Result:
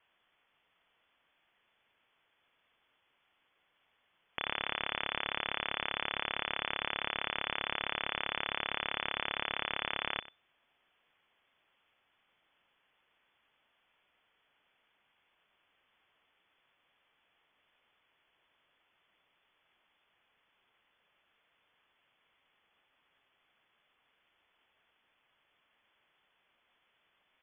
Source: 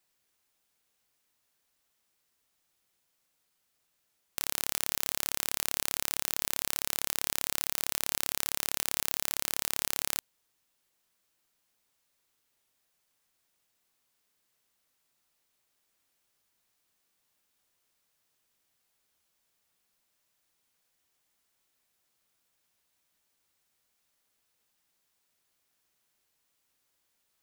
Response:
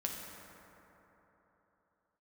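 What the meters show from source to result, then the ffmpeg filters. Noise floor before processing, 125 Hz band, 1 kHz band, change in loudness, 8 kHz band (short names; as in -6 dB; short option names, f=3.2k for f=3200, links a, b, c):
-77 dBFS, -2.5 dB, +5.0 dB, -4.5 dB, under -40 dB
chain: -filter_complex "[0:a]acontrast=53,asplit=2[a][b];[b]adelay=93.29,volume=-17dB,highshelf=f=4k:g=-2.1[c];[a][c]amix=inputs=2:normalize=0,lowpass=f=3k:t=q:w=0.5098,lowpass=f=3k:t=q:w=0.6013,lowpass=f=3k:t=q:w=0.9,lowpass=f=3k:t=q:w=2.563,afreqshift=-3500,volume=3.5dB"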